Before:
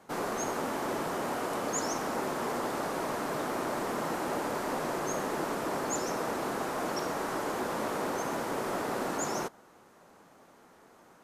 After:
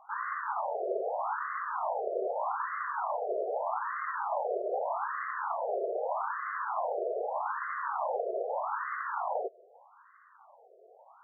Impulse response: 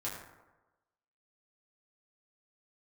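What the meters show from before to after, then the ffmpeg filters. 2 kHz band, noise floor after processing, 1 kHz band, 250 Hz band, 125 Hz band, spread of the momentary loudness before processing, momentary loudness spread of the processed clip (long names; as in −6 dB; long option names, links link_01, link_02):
−0.5 dB, −59 dBFS, +1.5 dB, below −15 dB, below −40 dB, 1 LU, 2 LU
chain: -af "afftfilt=real='re*between(b*sr/1024,500*pow(1500/500,0.5+0.5*sin(2*PI*0.81*pts/sr))/1.41,500*pow(1500/500,0.5+0.5*sin(2*PI*0.81*pts/sr))*1.41)':imag='im*between(b*sr/1024,500*pow(1500/500,0.5+0.5*sin(2*PI*0.81*pts/sr))/1.41,500*pow(1500/500,0.5+0.5*sin(2*PI*0.81*pts/sr))*1.41)':win_size=1024:overlap=0.75,volume=5dB"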